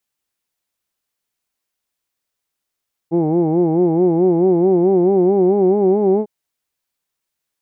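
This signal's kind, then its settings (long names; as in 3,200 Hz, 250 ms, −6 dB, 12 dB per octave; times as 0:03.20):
vowel from formants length 3.15 s, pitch 161 Hz, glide +4 semitones, vibrato 4.6 Hz, vibrato depth 1.15 semitones, F1 370 Hz, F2 800 Hz, F3 2,200 Hz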